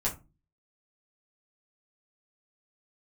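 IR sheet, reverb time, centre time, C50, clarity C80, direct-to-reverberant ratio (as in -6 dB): 0.30 s, 17 ms, 13.0 dB, 20.5 dB, -6.0 dB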